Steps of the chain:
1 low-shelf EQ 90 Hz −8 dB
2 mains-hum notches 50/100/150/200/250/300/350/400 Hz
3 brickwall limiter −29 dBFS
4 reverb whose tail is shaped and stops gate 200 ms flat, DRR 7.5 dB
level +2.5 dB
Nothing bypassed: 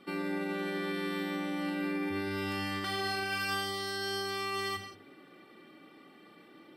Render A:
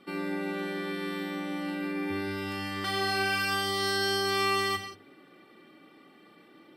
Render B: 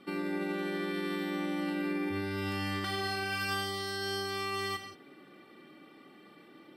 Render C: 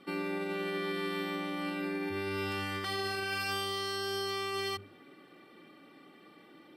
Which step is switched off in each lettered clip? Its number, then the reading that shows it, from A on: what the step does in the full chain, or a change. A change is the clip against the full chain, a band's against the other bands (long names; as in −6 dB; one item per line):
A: 3, average gain reduction 2.0 dB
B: 2, 125 Hz band +3.0 dB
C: 4, change in crest factor −2.5 dB